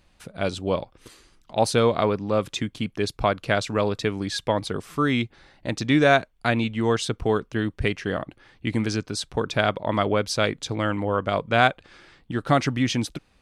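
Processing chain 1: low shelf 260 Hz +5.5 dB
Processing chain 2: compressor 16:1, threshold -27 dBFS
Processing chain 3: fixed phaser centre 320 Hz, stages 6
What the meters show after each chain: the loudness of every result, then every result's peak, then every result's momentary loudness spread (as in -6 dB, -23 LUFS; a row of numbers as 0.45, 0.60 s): -23.0, -33.0, -27.5 LUFS; -3.0, -14.0, -9.0 dBFS; 10, 6, 10 LU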